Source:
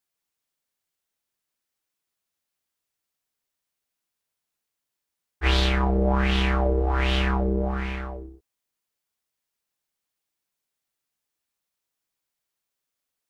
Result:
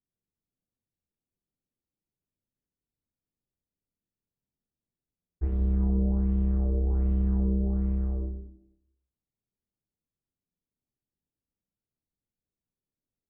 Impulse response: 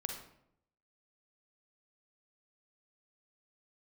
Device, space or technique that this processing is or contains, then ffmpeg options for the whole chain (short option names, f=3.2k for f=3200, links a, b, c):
television next door: -filter_complex "[0:a]acompressor=threshold=-29dB:ratio=5,lowpass=260[a];[1:a]atrim=start_sample=2205[b];[a][b]afir=irnorm=-1:irlink=0,volume=6.5dB"